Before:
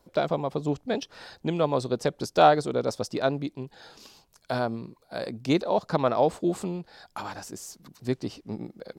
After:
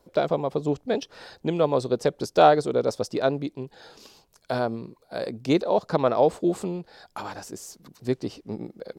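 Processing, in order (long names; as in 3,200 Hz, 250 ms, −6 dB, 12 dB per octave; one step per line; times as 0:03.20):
parametric band 450 Hz +4.5 dB 0.91 octaves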